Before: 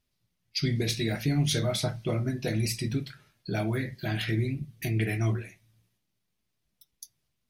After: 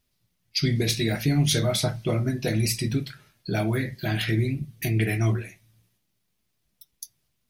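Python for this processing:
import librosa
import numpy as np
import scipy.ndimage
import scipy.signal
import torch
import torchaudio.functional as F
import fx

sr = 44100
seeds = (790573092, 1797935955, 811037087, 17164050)

y = fx.high_shelf(x, sr, hz=9300.0, db=5.0)
y = F.gain(torch.from_numpy(y), 4.0).numpy()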